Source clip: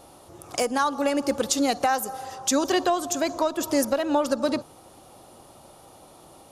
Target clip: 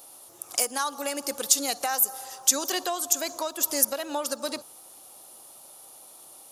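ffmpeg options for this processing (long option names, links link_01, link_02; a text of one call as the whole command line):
ffmpeg -i in.wav -af "aemphasis=mode=production:type=riaa,volume=-6dB" out.wav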